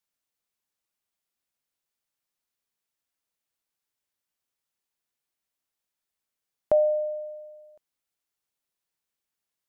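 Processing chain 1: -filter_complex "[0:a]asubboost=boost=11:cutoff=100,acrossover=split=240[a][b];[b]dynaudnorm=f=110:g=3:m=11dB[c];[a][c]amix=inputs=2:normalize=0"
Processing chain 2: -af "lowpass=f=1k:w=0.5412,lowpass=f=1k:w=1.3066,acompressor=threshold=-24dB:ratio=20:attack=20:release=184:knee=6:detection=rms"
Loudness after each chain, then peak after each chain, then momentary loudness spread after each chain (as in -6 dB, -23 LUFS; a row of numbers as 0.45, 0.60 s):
-17.5, -31.0 LUFS; -4.5, -14.5 dBFS; 17, 16 LU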